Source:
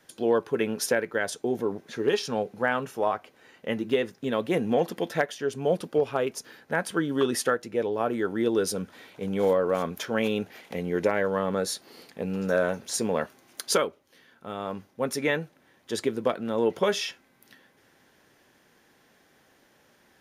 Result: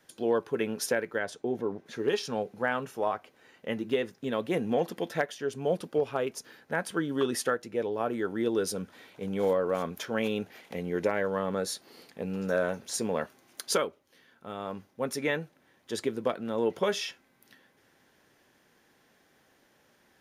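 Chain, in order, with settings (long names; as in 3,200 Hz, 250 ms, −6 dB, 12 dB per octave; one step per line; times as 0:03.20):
0:01.19–0:01.86: low-pass filter 3,100 Hz 6 dB per octave
level −3.5 dB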